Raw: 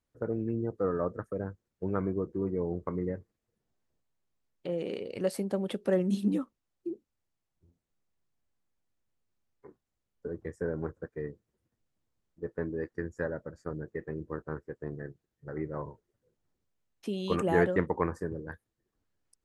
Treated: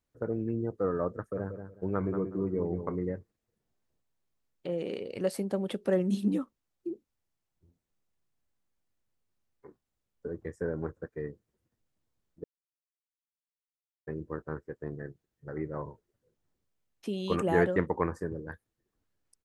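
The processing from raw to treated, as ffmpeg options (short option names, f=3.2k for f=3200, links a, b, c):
-filter_complex "[0:a]asplit=3[a][b][c];[a]afade=t=out:st=1.33:d=0.02[d];[b]asplit=2[e][f];[f]adelay=184,lowpass=f=3.5k:p=1,volume=-8dB,asplit=2[g][h];[h]adelay=184,lowpass=f=3.5k:p=1,volume=0.23,asplit=2[i][j];[j]adelay=184,lowpass=f=3.5k:p=1,volume=0.23[k];[e][g][i][k]amix=inputs=4:normalize=0,afade=t=in:st=1.33:d=0.02,afade=t=out:st=2.96:d=0.02[l];[c]afade=t=in:st=2.96:d=0.02[m];[d][l][m]amix=inputs=3:normalize=0,asplit=3[n][o][p];[n]atrim=end=12.44,asetpts=PTS-STARTPTS,afade=t=out:st=12.436:d=0.004:c=hsin[q];[o]atrim=start=12.44:end=14.07,asetpts=PTS-STARTPTS,volume=0[r];[p]atrim=start=14.07,asetpts=PTS-STARTPTS,afade=t=in:d=0.004:c=hsin[s];[q][r][s]concat=n=3:v=0:a=1"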